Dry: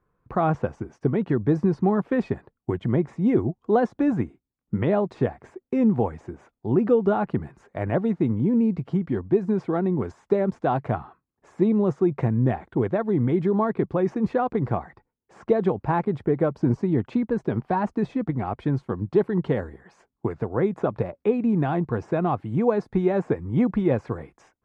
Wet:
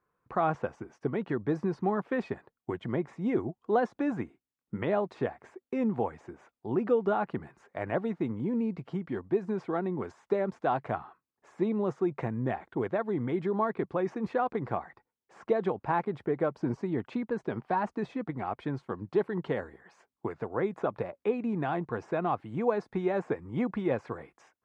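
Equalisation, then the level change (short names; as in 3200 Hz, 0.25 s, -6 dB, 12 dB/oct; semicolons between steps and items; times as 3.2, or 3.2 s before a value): LPF 1700 Hz 6 dB/oct; tilt +3.5 dB/oct; -2.0 dB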